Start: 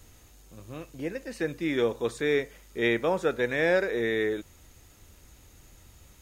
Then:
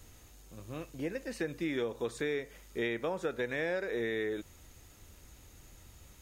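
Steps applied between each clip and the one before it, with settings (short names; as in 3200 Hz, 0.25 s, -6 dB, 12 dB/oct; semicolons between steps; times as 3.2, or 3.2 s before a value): compressor 6:1, threshold -29 dBFS, peak gain reduction 9.5 dB; gain -1.5 dB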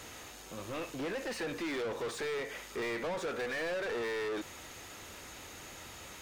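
overdrive pedal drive 32 dB, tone 3000 Hz, clips at -21 dBFS; gain -8 dB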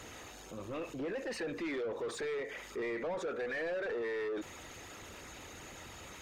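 formant sharpening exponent 1.5; gain -1 dB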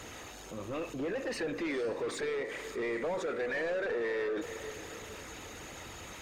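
diffused feedback echo 0.466 s, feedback 46%, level -11.5 dB; gain +3 dB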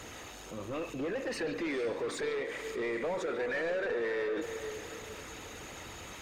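delay with a stepping band-pass 0.141 s, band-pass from 3000 Hz, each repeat -1.4 oct, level -6.5 dB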